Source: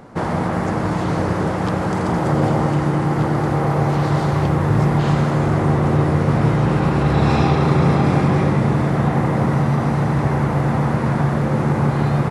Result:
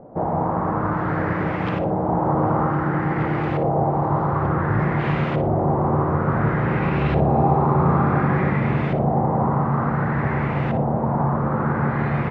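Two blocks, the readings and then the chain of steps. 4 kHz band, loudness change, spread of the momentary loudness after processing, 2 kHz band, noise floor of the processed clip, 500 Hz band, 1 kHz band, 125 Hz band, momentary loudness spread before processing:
below −10 dB, −3.0 dB, 5 LU, −1.5 dB, −24 dBFS, −1.5 dB, +0.5 dB, −4.5 dB, 5 LU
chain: auto-filter low-pass saw up 0.56 Hz 610–2,900 Hz
flutter between parallel walls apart 9.9 metres, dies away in 0.32 s
level −4.5 dB

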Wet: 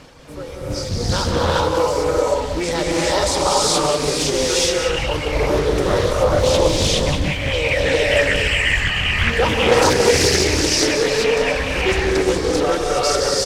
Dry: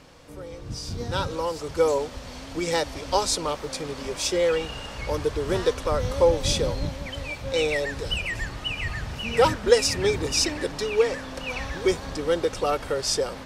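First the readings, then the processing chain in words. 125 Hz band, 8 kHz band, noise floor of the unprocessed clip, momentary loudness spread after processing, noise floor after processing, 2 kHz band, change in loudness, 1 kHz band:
+9.5 dB, +9.0 dB, −40 dBFS, 6 LU, −27 dBFS, +11.5 dB, +8.0 dB, +8.5 dB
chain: reverb reduction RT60 0.83 s
in parallel at +0.5 dB: compressor whose output falls as the input rises −28 dBFS, ratio −0.5
on the sum: reverb reduction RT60 1.7 s
on a send: repeating echo 186 ms, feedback 39%, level −9 dB
on the sum: reverb whose tail is shaped and stops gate 450 ms rising, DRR −6 dB
highs frequency-modulated by the lows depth 0.51 ms
level −1 dB

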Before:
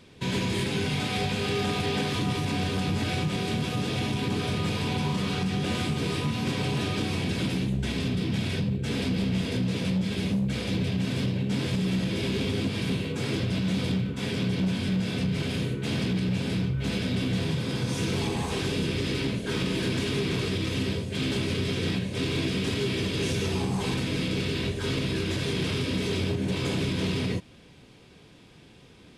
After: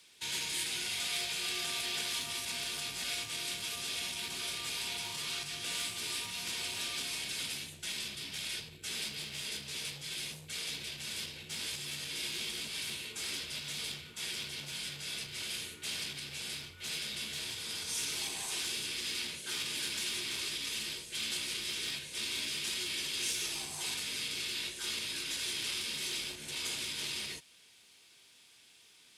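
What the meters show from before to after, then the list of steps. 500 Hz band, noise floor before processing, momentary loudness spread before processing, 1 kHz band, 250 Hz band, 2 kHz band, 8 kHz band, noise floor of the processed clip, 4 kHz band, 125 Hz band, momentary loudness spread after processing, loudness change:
−20.5 dB, −52 dBFS, 2 LU, −13.0 dB, −25.5 dB, −5.5 dB, +4.5 dB, −61 dBFS, −1.5 dB, −27.0 dB, 5 LU, −7.5 dB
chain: first difference
frequency shifter −43 Hz
level +4.5 dB

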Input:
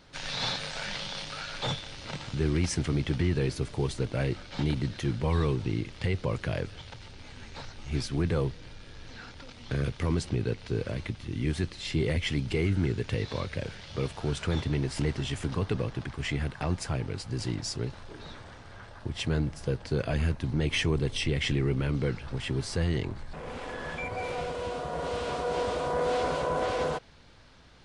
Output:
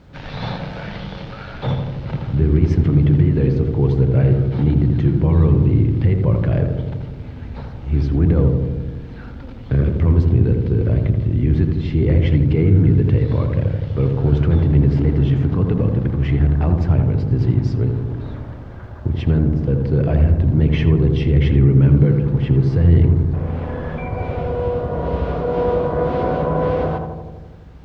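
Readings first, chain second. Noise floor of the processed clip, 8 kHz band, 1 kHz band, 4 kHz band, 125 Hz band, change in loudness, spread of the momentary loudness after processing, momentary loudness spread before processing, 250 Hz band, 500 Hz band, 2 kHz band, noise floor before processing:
−34 dBFS, below −15 dB, +6.5 dB, can't be measured, +16.0 dB, +13.5 dB, 15 LU, 13 LU, +13.5 dB, +10.0 dB, +1.0 dB, −48 dBFS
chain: high-pass filter 56 Hz
spectral tilt −3 dB per octave
brickwall limiter −14 dBFS, peak gain reduction 5 dB
background noise blue −58 dBFS
high-frequency loss of the air 200 metres
feedback echo with a low-pass in the loop 82 ms, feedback 76%, low-pass 1,100 Hz, level −3.5 dB
level +5.5 dB

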